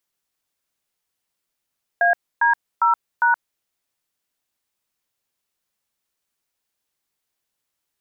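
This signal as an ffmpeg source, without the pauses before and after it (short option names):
-f lavfi -i "aevalsrc='0.158*clip(min(mod(t,0.403),0.123-mod(t,0.403))/0.002,0,1)*(eq(floor(t/0.403),0)*(sin(2*PI*697*mod(t,0.403))+sin(2*PI*1633*mod(t,0.403)))+eq(floor(t/0.403),1)*(sin(2*PI*941*mod(t,0.403))+sin(2*PI*1633*mod(t,0.403)))+eq(floor(t/0.403),2)*(sin(2*PI*941*mod(t,0.403))+sin(2*PI*1336*mod(t,0.403)))+eq(floor(t/0.403),3)*(sin(2*PI*941*mod(t,0.403))+sin(2*PI*1477*mod(t,0.403))))':d=1.612:s=44100"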